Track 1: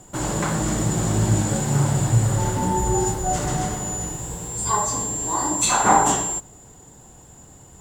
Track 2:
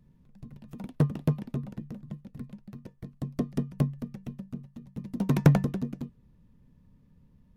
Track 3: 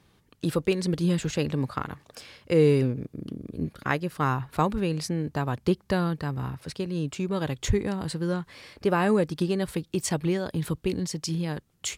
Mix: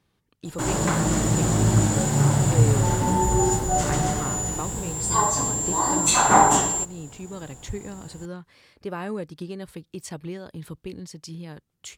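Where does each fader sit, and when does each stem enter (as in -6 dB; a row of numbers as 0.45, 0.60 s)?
+0.5 dB, off, -8.5 dB; 0.45 s, off, 0.00 s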